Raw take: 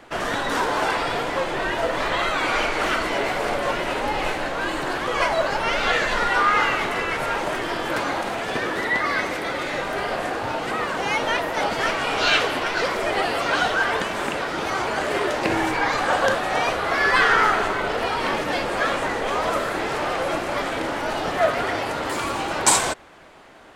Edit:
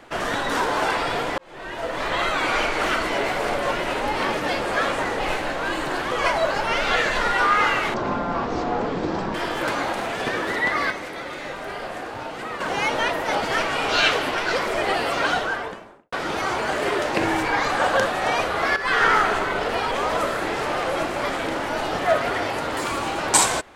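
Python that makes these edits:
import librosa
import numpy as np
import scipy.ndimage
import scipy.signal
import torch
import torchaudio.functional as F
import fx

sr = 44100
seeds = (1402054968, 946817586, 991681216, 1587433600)

y = fx.studio_fade_out(x, sr, start_s=13.46, length_s=0.95)
y = fx.edit(y, sr, fx.fade_in_span(start_s=1.38, length_s=0.84),
    fx.speed_span(start_s=6.9, length_s=0.73, speed=0.52),
    fx.clip_gain(start_s=9.19, length_s=1.7, db=-6.0),
    fx.fade_in_from(start_s=17.05, length_s=0.28, floor_db=-14.0),
    fx.move(start_s=18.2, length_s=1.04, to_s=4.16), tone=tone)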